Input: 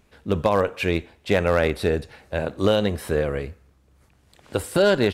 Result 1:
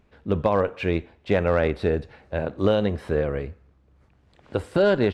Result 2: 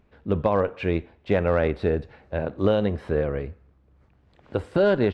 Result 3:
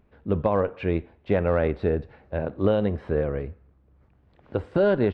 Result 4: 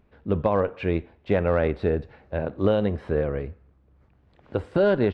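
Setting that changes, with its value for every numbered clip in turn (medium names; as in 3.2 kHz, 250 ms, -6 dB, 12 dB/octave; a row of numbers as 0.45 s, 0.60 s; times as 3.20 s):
tape spacing loss, at 10 kHz: 20 dB, 30 dB, 46 dB, 38 dB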